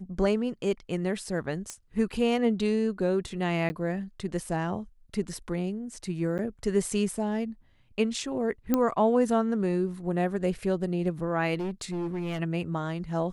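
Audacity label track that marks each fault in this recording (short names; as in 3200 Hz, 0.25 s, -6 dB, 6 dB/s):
1.700000	1.700000	pop -21 dBFS
3.690000	3.700000	gap 10 ms
6.380000	6.390000	gap 8.7 ms
8.740000	8.740000	pop -11 dBFS
11.540000	12.400000	clipped -28 dBFS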